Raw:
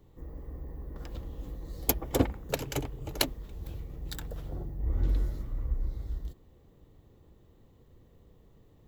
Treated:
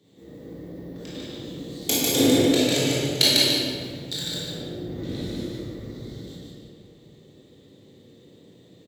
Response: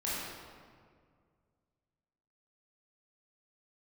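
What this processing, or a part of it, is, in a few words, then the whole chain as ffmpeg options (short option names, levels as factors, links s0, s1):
stadium PA: -filter_complex "[0:a]highpass=200,equalizer=f=3500:t=o:w=0.31:g=7,aecho=1:1:148.7|291.5:0.794|0.282[s0];[1:a]atrim=start_sample=2205[s1];[s0][s1]afir=irnorm=-1:irlink=0,equalizer=f=125:t=o:w=1:g=11,equalizer=f=250:t=o:w=1:g=7,equalizer=f=500:t=o:w=1:g=7,equalizer=f=1000:t=o:w=1:g=-7,equalizer=f=2000:t=o:w=1:g=6,equalizer=f=4000:t=o:w=1:g=11,equalizer=f=8000:t=o:w=1:g=12,volume=0.631"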